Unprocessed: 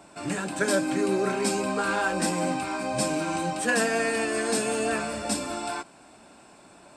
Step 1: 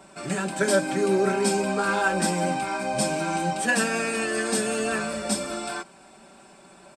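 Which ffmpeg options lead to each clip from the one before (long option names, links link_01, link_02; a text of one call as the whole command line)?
ffmpeg -i in.wav -af "aecho=1:1:5.2:0.64" out.wav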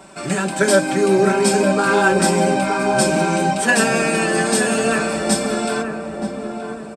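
ffmpeg -i in.wav -filter_complex "[0:a]asplit=2[link_01][link_02];[link_02]adelay=924,lowpass=frequency=890:poles=1,volume=-4dB,asplit=2[link_03][link_04];[link_04]adelay=924,lowpass=frequency=890:poles=1,volume=0.51,asplit=2[link_05][link_06];[link_06]adelay=924,lowpass=frequency=890:poles=1,volume=0.51,asplit=2[link_07][link_08];[link_08]adelay=924,lowpass=frequency=890:poles=1,volume=0.51,asplit=2[link_09][link_10];[link_10]adelay=924,lowpass=frequency=890:poles=1,volume=0.51,asplit=2[link_11][link_12];[link_12]adelay=924,lowpass=frequency=890:poles=1,volume=0.51,asplit=2[link_13][link_14];[link_14]adelay=924,lowpass=frequency=890:poles=1,volume=0.51[link_15];[link_01][link_03][link_05][link_07][link_09][link_11][link_13][link_15]amix=inputs=8:normalize=0,volume=7dB" out.wav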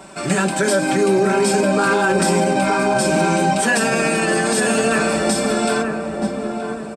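ffmpeg -i in.wav -af "alimiter=level_in=10dB:limit=-1dB:release=50:level=0:latency=1,volume=-7dB" out.wav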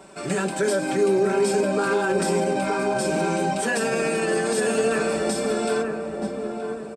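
ffmpeg -i in.wav -af "equalizer=frequency=440:width_type=o:width=0.52:gain=7,volume=-8dB" out.wav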